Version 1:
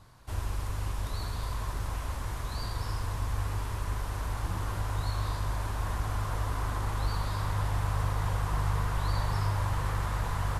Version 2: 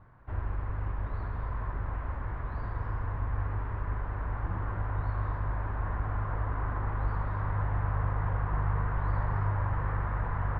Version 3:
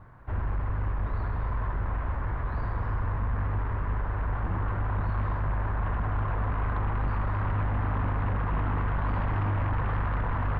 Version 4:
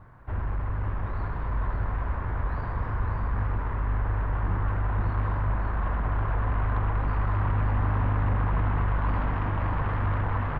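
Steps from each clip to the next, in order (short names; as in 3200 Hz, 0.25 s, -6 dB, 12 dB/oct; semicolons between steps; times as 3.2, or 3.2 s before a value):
Chebyshev low-pass 1800 Hz, order 3
sine folder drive 7 dB, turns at -18 dBFS; gain -5 dB
echo 0.556 s -5 dB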